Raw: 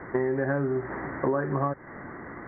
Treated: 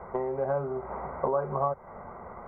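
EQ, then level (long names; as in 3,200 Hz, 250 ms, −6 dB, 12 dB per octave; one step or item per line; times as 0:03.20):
parametric band 120 Hz −14.5 dB 0.44 octaves
phaser with its sweep stopped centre 730 Hz, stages 4
+3.5 dB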